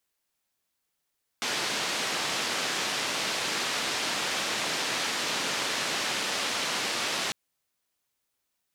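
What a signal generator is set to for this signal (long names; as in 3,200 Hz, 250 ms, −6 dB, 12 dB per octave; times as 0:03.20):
band-limited noise 190–4,800 Hz, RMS −30 dBFS 5.90 s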